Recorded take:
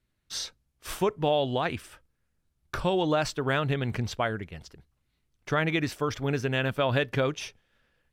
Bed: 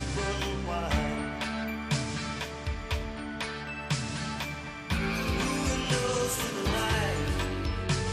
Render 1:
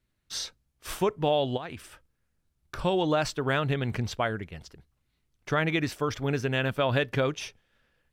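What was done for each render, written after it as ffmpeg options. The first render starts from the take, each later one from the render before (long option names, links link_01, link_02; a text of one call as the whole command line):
ffmpeg -i in.wav -filter_complex "[0:a]asplit=3[link_01][link_02][link_03];[link_01]afade=type=out:start_time=1.56:duration=0.02[link_04];[link_02]acompressor=threshold=-35dB:ratio=4:attack=3.2:release=140:knee=1:detection=peak,afade=type=in:start_time=1.56:duration=0.02,afade=type=out:start_time=2.78:duration=0.02[link_05];[link_03]afade=type=in:start_time=2.78:duration=0.02[link_06];[link_04][link_05][link_06]amix=inputs=3:normalize=0" out.wav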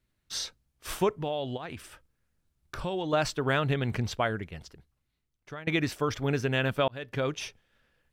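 ffmpeg -i in.wav -filter_complex "[0:a]asettb=1/sr,asplit=3[link_01][link_02][link_03];[link_01]atrim=end=1.094[link_04];[link_02]atrim=start=1.09:end=3.13,asetpts=PTS-STARTPTS,afade=type=in:duration=0.004:curve=qsin,afade=type=out:start_time=2.036:duration=0.004:curve=qsin,acompressor=threshold=-33dB:ratio=2:attack=3.2:release=140:knee=1:detection=peak[link_05];[link_03]atrim=start=3.126[link_06];[link_04][link_05]acrossfade=duration=0.004:curve1=hsin:curve2=qsin[link_07];[link_07][link_06]acrossfade=duration=0.004:curve1=qsin:curve2=hsin,asplit=3[link_08][link_09][link_10];[link_08]atrim=end=5.67,asetpts=PTS-STARTPTS,afade=type=out:start_time=4.58:duration=1.09:silence=0.0944061[link_11];[link_09]atrim=start=5.67:end=6.88,asetpts=PTS-STARTPTS,afade=type=in:duration=0.004:curve=hsin:silence=0.0944061,afade=type=out:start_time=1.206:duration=0.004:curve=hsin[link_12];[link_10]atrim=start=6.88,asetpts=PTS-STARTPTS,afade=type=in:duration=0.51[link_13];[link_11][link_12][link_13]concat=n=3:v=0:a=1" out.wav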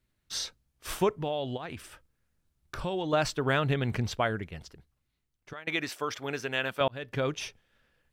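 ffmpeg -i in.wav -filter_complex "[0:a]asettb=1/sr,asplit=3[link_01][link_02][link_03];[link_01]atrim=end=5.534[link_04];[link_02]atrim=start=5.53:end=6.81,asetpts=PTS-STARTPTS,afade=type=in:duration=0.004:curve=qsin,afade=type=out:start_time=1.276:duration=0.004:curve=qsin,highpass=frequency=650:poles=1[link_05];[link_03]atrim=start=6.806[link_06];[link_04][link_05]acrossfade=duration=0.004:curve1=hsin:curve2=qsin[link_07];[link_07][link_06]acrossfade=duration=0.004:curve1=qsin:curve2=hsin" out.wav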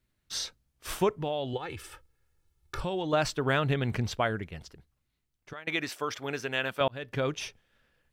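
ffmpeg -i in.wav -filter_complex "[0:a]asettb=1/sr,asplit=3[link_01][link_02][link_03];[link_01]atrim=end=1.534[link_04];[link_02]atrim=start=1.53:end=2.81,asetpts=PTS-STARTPTS,afade=type=in:duration=0.004:curve=qsin,afade=type=out:start_time=1.276:duration=0.004:curve=qsin,aecho=1:1:2.3:0.77,atrim=end_sample=56448[link_05];[link_03]atrim=start=2.806[link_06];[link_04][link_05]acrossfade=duration=0.004:curve1=hsin:curve2=qsin[link_07];[link_07][link_06]acrossfade=duration=0.004:curve1=qsin:curve2=hsin" out.wav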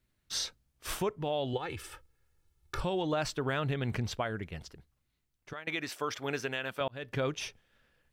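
ffmpeg -i in.wav -af "alimiter=limit=-21.5dB:level=0:latency=1:release=265" out.wav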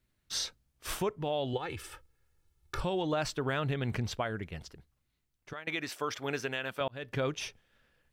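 ffmpeg -i in.wav -af anull out.wav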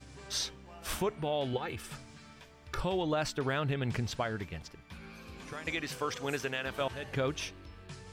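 ffmpeg -i in.wav -i bed.wav -filter_complex "[1:a]volume=-19dB[link_01];[0:a][link_01]amix=inputs=2:normalize=0" out.wav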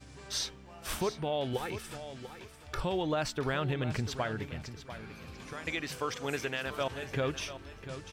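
ffmpeg -i in.wav -af "aecho=1:1:693|1386|2079:0.251|0.0628|0.0157" out.wav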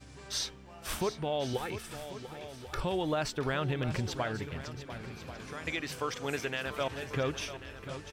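ffmpeg -i in.wav -af "aecho=1:1:1090|2180|3270:0.2|0.0599|0.018" out.wav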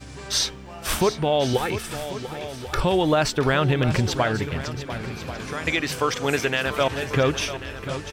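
ffmpeg -i in.wav -af "volume=11.5dB" out.wav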